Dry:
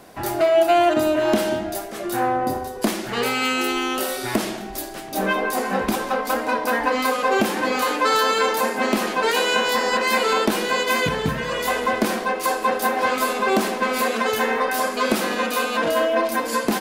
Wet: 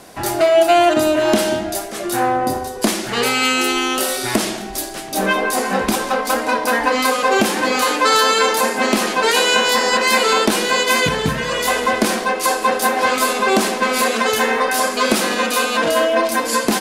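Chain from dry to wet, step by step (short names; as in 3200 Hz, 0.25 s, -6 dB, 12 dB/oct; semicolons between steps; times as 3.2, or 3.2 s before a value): LPF 11000 Hz 12 dB/oct; high shelf 3900 Hz +8 dB; gain +3.5 dB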